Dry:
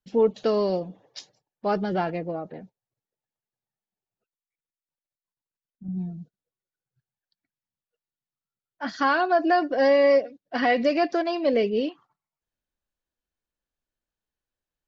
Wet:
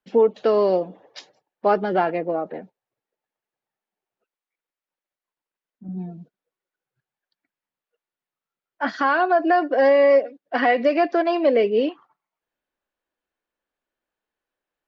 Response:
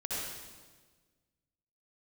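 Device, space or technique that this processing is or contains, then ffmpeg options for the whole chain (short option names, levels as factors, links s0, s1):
DJ mixer with the lows and highs turned down: -filter_complex "[0:a]acrossover=split=250 3000:gain=0.158 1 0.224[s0][s1][s2];[s0][s1][s2]amix=inputs=3:normalize=0,alimiter=limit=0.133:level=0:latency=1:release=498,volume=2.66"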